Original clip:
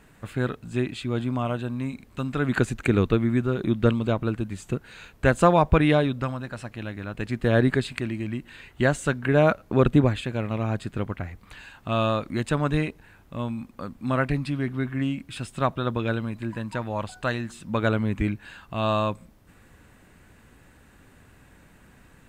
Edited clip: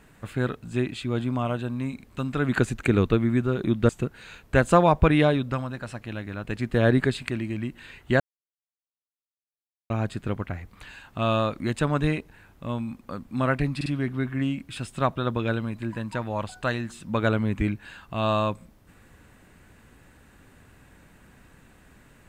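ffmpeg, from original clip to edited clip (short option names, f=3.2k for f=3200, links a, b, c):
-filter_complex "[0:a]asplit=6[a][b][c][d][e][f];[a]atrim=end=3.892[g];[b]atrim=start=4.588:end=8.9,asetpts=PTS-STARTPTS,afade=t=out:st=4.308:d=0.004:c=hsin[h];[c]atrim=start=8.9:end=10.6,asetpts=PTS-STARTPTS,volume=0[i];[d]atrim=start=10.6:end=14.512,asetpts=PTS-STARTPTS,afade=t=in:d=0.004:c=hsin[j];[e]atrim=start=14.458:end=14.512[k];[f]atrim=start=14.458[l];[h][i][j]concat=n=3:v=0:a=1[m];[g][m]acrossfade=d=0.004:c1=hsin:c2=hsin[n];[n][k]acrossfade=d=0.004:c1=hsin:c2=hsin[o];[o][l]acrossfade=d=0.004:c1=hsin:c2=hsin"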